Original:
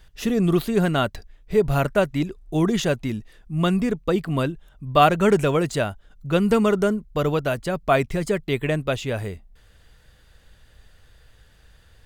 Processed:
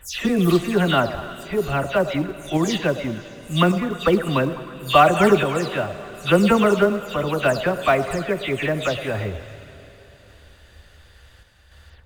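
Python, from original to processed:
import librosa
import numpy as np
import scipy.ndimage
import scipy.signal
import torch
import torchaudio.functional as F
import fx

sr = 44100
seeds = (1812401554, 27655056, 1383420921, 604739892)

p1 = fx.spec_delay(x, sr, highs='early', ms=159)
p2 = fx.lowpass(p1, sr, hz=3200.0, slope=6)
p3 = fx.peak_eq(p2, sr, hz=76.0, db=12.5, octaves=0.46)
p4 = fx.tremolo_random(p3, sr, seeds[0], hz=3.5, depth_pct=55)
p5 = fx.tilt_eq(p4, sr, slope=2.0)
p6 = p5 + fx.echo_stepped(p5, sr, ms=104, hz=570.0, octaves=0.7, feedback_pct=70, wet_db=-10.5, dry=0)
p7 = fx.rev_plate(p6, sr, seeds[1], rt60_s=3.9, hf_ratio=1.0, predelay_ms=0, drr_db=13.0)
p8 = fx.quant_float(p7, sr, bits=2)
p9 = p7 + (p8 * 10.0 ** (-9.0 / 20.0))
y = p9 * 10.0 ** (4.5 / 20.0)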